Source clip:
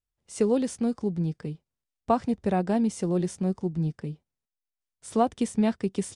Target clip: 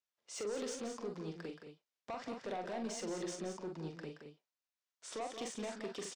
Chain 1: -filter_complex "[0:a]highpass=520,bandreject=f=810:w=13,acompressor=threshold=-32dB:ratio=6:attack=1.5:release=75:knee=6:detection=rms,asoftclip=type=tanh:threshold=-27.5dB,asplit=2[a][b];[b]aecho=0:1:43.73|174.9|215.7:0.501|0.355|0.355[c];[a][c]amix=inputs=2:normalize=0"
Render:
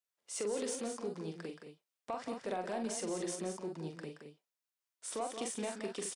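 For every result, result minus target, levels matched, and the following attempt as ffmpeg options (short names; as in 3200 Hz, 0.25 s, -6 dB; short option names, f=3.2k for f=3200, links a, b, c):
soft clip: distortion -12 dB; 8000 Hz band +2.5 dB
-filter_complex "[0:a]highpass=520,bandreject=f=810:w=13,acompressor=threshold=-32dB:ratio=6:attack=1.5:release=75:knee=6:detection=rms,asoftclip=type=tanh:threshold=-36.5dB,asplit=2[a][b];[b]aecho=0:1:43.73|174.9|215.7:0.501|0.355|0.355[c];[a][c]amix=inputs=2:normalize=0"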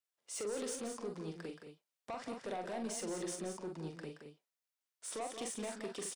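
8000 Hz band +3.5 dB
-filter_complex "[0:a]highpass=520,bandreject=f=810:w=13,acompressor=threshold=-32dB:ratio=6:attack=1.5:release=75:knee=6:detection=rms,lowpass=f=6.9k:w=0.5412,lowpass=f=6.9k:w=1.3066,asoftclip=type=tanh:threshold=-36.5dB,asplit=2[a][b];[b]aecho=0:1:43.73|174.9|215.7:0.501|0.355|0.355[c];[a][c]amix=inputs=2:normalize=0"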